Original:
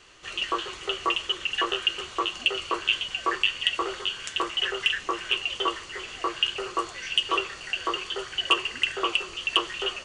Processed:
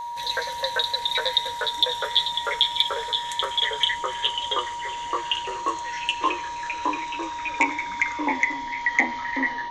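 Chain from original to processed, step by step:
gliding playback speed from 142% → 65%
EQ curve with evenly spaced ripples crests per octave 1.1, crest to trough 9 dB
steady tone 950 Hz −30 dBFS

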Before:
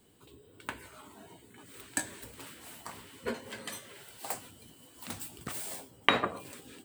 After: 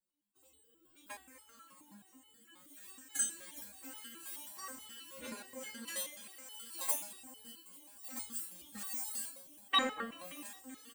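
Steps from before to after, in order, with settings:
high-shelf EQ 4,500 Hz +9.5 dB
comb filter 3.7 ms, depth 95%
noise gate with hold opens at −43 dBFS
speech leveller within 4 dB 2 s
phase-vocoder stretch with locked phases 1.6×
echo machine with several playback heads 192 ms, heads second and third, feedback 44%, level −22.5 dB
step-sequenced resonator 9.4 Hz 180–430 Hz
level +3.5 dB

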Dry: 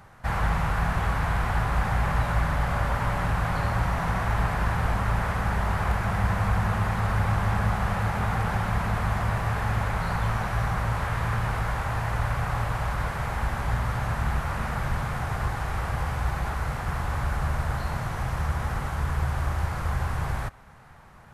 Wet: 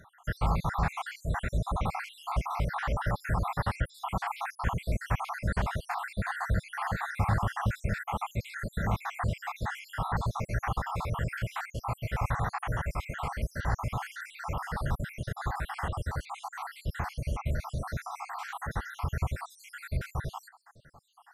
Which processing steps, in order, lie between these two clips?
time-frequency cells dropped at random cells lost 71%
low-shelf EQ 120 Hz −3 dB

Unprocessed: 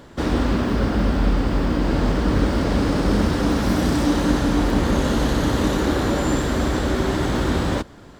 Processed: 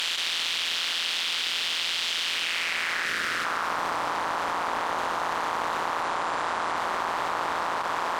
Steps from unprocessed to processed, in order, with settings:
compressing power law on the bin magnitudes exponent 0.35
band-pass filter sweep 3,200 Hz → 1,000 Hz, 0:02.23–0:03.84
amplitude modulation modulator 170 Hz, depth 60%
0:00.83–0:01.53: high-pass filter 130 Hz 24 dB per octave
0:03.05–0:03.45: parametric band 870 Hz −13 dB 0.94 octaves
0:06.03–0:06.77: Butterworth low-pass 11,000 Hz 48 dB per octave
envelope flattener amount 100%

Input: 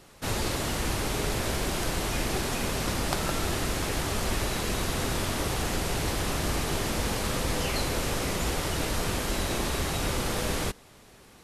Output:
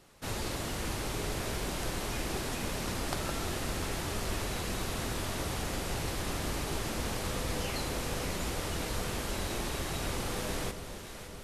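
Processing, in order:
delay that swaps between a low-pass and a high-pass 281 ms, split 840 Hz, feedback 82%, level −9 dB
level −6.5 dB

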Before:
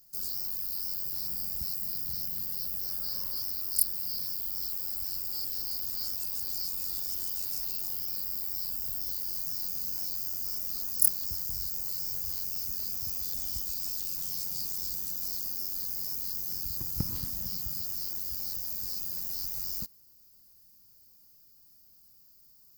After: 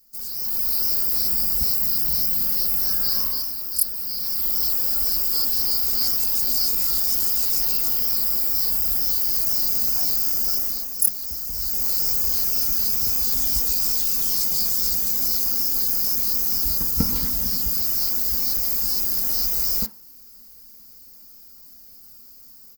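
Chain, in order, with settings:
comb filter 4.4 ms, depth 85%
automatic gain control gain up to 11.5 dB
on a send: convolution reverb RT60 0.30 s, pre-delay 3 ms, DRR 3 dB
on the sum: level −1 dB

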